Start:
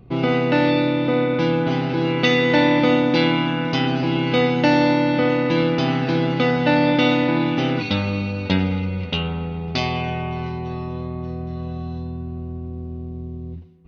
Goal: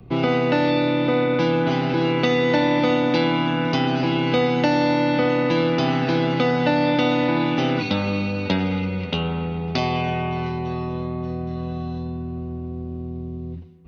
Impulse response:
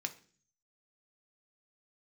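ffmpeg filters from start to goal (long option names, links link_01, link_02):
-filter_complex "[0:a]acrossover=split=130|550|1300|4100[link_01][link_02][link_03][link_04][link_05];[link_01]acompressor=threshold=-38dB:ratio=4[link_06];[link_02]acompressor=threshold=-23dB:ratio=4[link_07];[link_03]acompressor=threshold=-25dB:ratio=4[link_08];[link_04]acompressor=threshold=-34dB:ratio=4[link_09];[link_05]acompressor=threshold=-38dB:ratio=4[link_10];[link_06][link_07][link_08][link_09][link_10]amix=inputs=5:normalize=0,volume=2.5dB"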